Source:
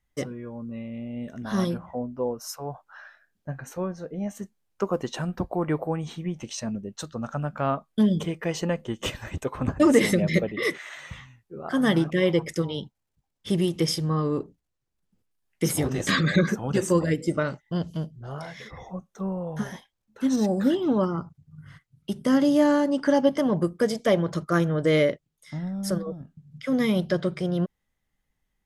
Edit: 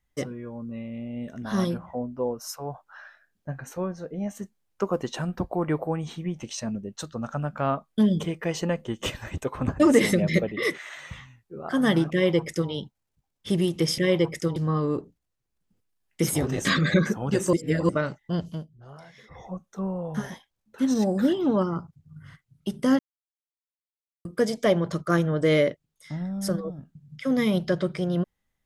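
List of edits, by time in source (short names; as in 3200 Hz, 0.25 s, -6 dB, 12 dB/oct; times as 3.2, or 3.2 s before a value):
12.12–12.7 copy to 13.98
16.95–17.31 reverse
17.89–18.88 dip -10 dB, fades 0.20 s
22.41–23.67 mute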